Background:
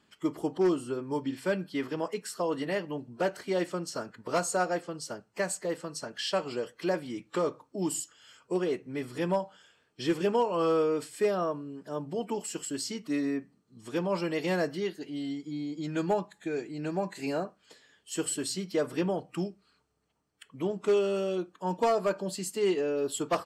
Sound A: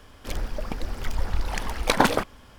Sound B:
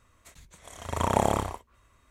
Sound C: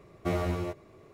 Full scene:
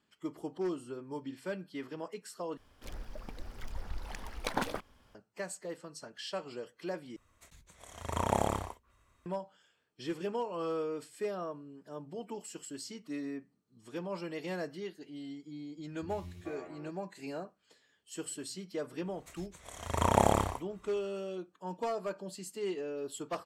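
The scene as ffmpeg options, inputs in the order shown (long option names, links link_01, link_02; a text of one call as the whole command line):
ffmpeg -i bed.wav -i cue0.wav -i cue1.wav -i cue2.wav -filter_complex "[2:a]asplit=2[link_01][link_02];[0:a]volume=-9dB[link_03];[3:a]acrossover=split=270|2300[link_04][link_05][link_06];[link_06]adelay=70[link_07];[link_05]adelay=430[link_08];[link_04][link_08][link_07]amix=inputs=3:normalize=0[link_09];[link_03]asplit=3[link_10][link_11][link_12];[link_10]atrim=end=2.574[link_13];[1:a]atrim=end=2.58,asetpts=PTS-STARTPTS,volume=-14dB[link_14];[link_11]atrim=start=5.146:end=7.164[link_15];[link_01]atrim=end=2.1,asetpts=PTS-STARTPTS,volume=-6dB[link_16];[link_12]atrim=start=9.256[link_17];[link_09]atrim=end=1.13,asetpts=PTS-STARTPTS,volume=-14dB,afade=type=in:duration=0.004:curve=hsin,afade=type=out:start_time=1.126:duration=0.004:curve=hsin,adelay=15770[link_18];[link_02]atrim=end=2.1,asetpts=PTS-STARTPTS,volume=-1.5dB,afade=type=in:duration=0.1,afade=type=out:start_time=2:duration=0.1,adelay=19010[link_19];[link_13][link_14]acrossfade=duration=0.004:curve1=hsin:curve2=hsin[link_20];[link_20][link_15]acrossfade=duration=0.004:curve1=hsin:curve2=hsin[link_21];[link_21][link_16]acrossfade=duration=0.004:curve1=hsin:curve2=hsin[link_22];[link_22][link_17]acrossfade=duration=0.004:curve1=hsin:curve2=hsin[link_23];[link_23][link_18][link_19]amix=inputs=3:normalize=0" out.wav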